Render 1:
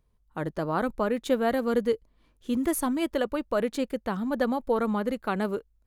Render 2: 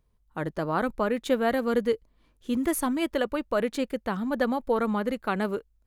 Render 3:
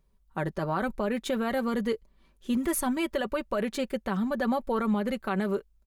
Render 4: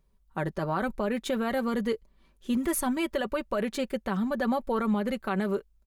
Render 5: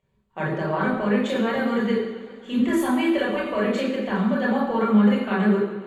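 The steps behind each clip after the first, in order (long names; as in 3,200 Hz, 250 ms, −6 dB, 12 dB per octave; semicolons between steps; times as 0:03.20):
dynamic equaliser 2,100 Hz, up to +3 dB, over −43 dBFS, Q 0.93
comb filter 5.2 ms, depth 57%; brickwall limiter −19 dBFS, peak gain reduction 7 dB
no processing that can be heard
convolution reverb RT60 0.90 s, pre-delay 26 ms, DRR −4.5 dB; feedback echo with a swinging delay time 137 ms, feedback 77%, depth 77 cents, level −19 dB; level −9 dB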